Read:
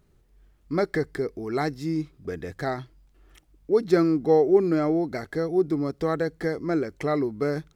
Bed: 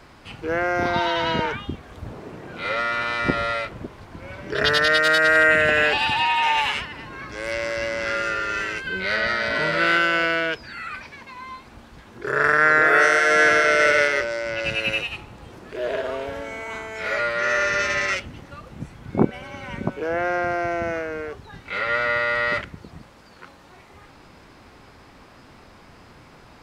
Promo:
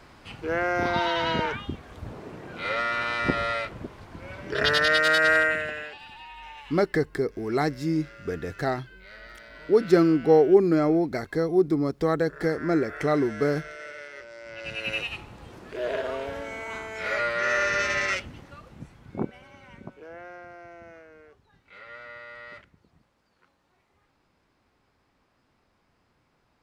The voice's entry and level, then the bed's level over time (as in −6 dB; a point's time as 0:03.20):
6.00 s, +1.5 dB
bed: 0:05.33 −3 dB
0:05.99 −23.5 dB
0:14.02 −23.5 dB
0:15.07 −3 dB
0:18.16 −3 dB
0:20.47 −21 dB